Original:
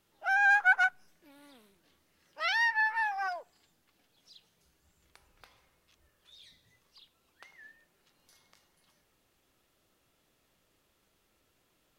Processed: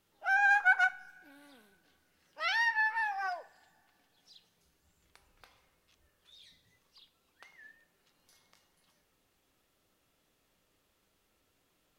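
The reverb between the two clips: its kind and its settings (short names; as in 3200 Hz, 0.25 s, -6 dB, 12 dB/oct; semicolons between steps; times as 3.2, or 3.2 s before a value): two-slope reverb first 0.41 s, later 2.4 s, from -20 dB, DRR 12 dB; gain -2 dB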